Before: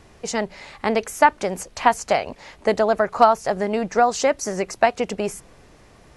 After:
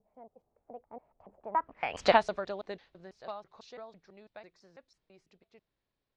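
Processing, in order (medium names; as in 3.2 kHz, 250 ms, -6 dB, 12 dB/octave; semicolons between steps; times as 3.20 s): slices played last to first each 153 ms, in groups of 4; Doppler pass-by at 2.05 s, 28 m/s, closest 1.6 m; low-pass sweep 720 Hz -> 3.9 kHz, 1.39–2.07 s; trim -1.5 dB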